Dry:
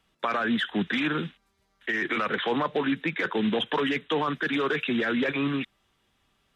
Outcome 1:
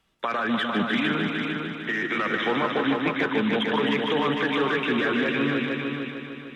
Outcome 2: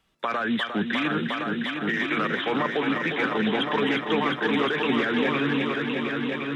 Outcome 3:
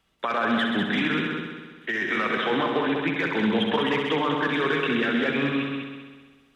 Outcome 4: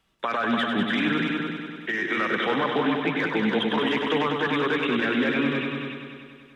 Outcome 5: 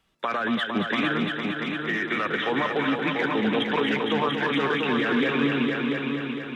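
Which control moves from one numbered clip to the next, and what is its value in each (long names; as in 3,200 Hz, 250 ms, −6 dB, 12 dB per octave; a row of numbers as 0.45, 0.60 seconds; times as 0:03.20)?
echo machine with several playback heads, delay time: 151, 355, 65, 97, 229 milliseconds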